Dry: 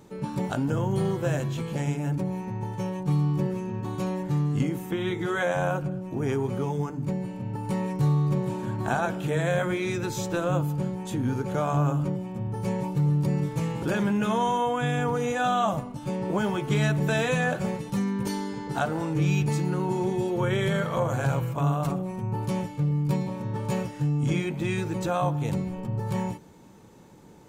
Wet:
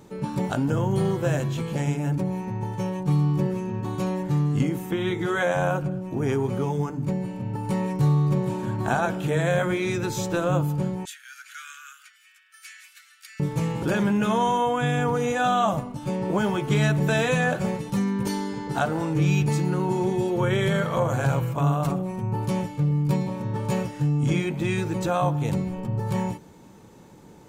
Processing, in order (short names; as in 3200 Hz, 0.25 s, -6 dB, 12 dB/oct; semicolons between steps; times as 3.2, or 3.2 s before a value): 11.05–13.4 steep high-pass 1400 Hz 72 dB/oct; gain +2.5 dB